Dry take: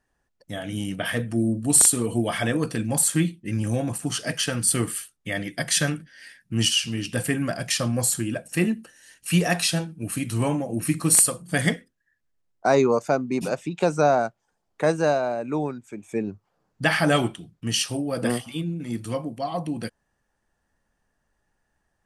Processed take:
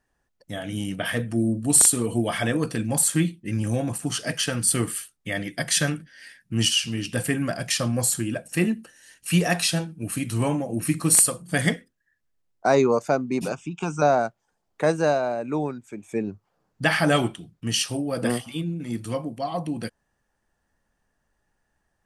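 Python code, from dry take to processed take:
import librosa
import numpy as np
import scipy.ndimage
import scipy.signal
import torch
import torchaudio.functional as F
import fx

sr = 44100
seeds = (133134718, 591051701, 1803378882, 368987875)

y = fx.fixed_phaser(x, sr, hz=2800.0, stages=8, at=(13.52, 14.02))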